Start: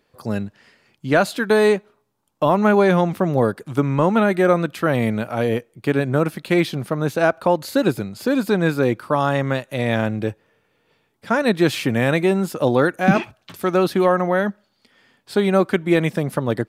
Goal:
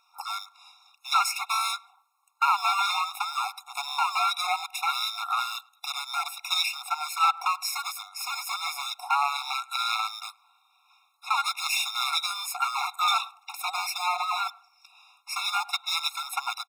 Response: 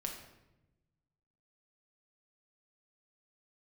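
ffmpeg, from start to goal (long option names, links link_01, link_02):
-filter_complex "[0:a]afftfilt=real='real(if(between(b,1,1012),(2*floor((b-1)/92)+1)*92-b,b),0)':imag='imag(if(between(b,1,1012),(2*floor((b-1)/92)+1)*92-b,b),0)*if(between(b,1,1012),-1,1)':win_size=2048:overlap=0.75,acrossover=split=590|1900[link_01][link_02][link_03];[link_02]acompressor=threshold=-27dB:ratio=6[link_04];[link_01][link_04][link_03]amix=inputs=3:normalize=0,aeval=exprs='clip(val(0),-1,0.0531)':channel_layout=same,asplit=2[link_05][link_06];[link_06]adelay=104,lowpass=frequency=1100:poles=1,volume=-19.5dB,asplit=2[link_07][link_08];[link_08]adelay=104,lowpass=frequency=1100:poles=1,volume=0.48,asplit=2[link_09][link_10];[link_10]adelay=104,lowpass=frequency=1100:poles=1,volume=0.48,asplit=2[link_11][link_12];[link_12]adelay=104,lowpass=frequency=1100:poles=1,volume=0.48[link_13];[link_05][link_07][link_09][link_11][link_13]amix=inputs=5:normalize=0,afftfilt=real='re*eq(mod(floor(b*sr/1024/710),2),1)':imag='im*eq(mod(floor(b*sr/1024/710),2),1)':win_size=1024:overlap=0.75,volume=6dB"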